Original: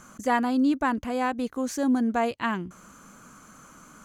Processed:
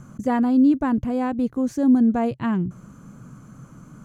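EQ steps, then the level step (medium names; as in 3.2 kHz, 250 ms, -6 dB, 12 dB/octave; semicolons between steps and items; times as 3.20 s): tilt shelf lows +7.5 dB, about 660 Hz; peaking EQ 130 Hz +14 dB 0.66 oct; 0.0 dB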